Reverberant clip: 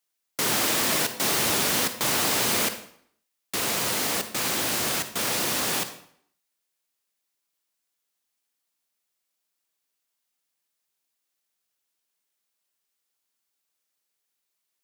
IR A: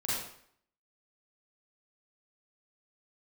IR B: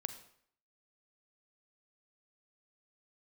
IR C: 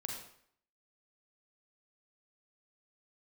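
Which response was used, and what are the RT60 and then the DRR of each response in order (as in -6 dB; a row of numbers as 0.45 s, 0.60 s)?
B; 0.60 s, 0.60 s, 0.60 s; -8.5 dB, 9.5 dB, 0.0 dB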